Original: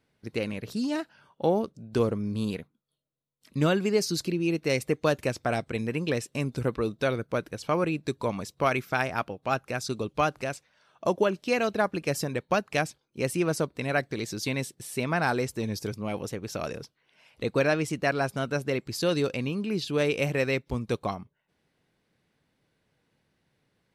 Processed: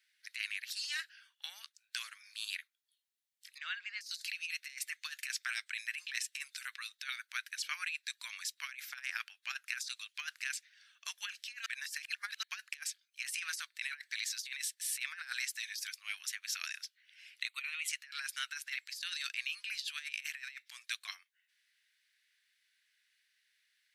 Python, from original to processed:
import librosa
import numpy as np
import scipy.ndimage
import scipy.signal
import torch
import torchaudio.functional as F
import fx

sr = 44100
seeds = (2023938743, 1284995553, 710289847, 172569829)

y = fx.spacing_loss(x, sr, db_at_10k=33, at=(3.58, 4.01))
y = fx.fixed_phaser(y, sr, hz=1100.0, stages=8, at=(17.47, 17.87), fade=0.02)
y = fx.edit(y, sr, fx.reverse_span(start_s=11.66, length_s=0.77), tone=tone)
y = scipy.signal.sosfilt(scipy.signal.ellip(4, 1.0, 80, 1700.0, 'highpass', fs=sr, output='sos'), y)
y = fx.over_compress(y, sr, threshold_db=-40.0, ratio=-0.5)
y = y * librosa.db_to_amplitude(1.0)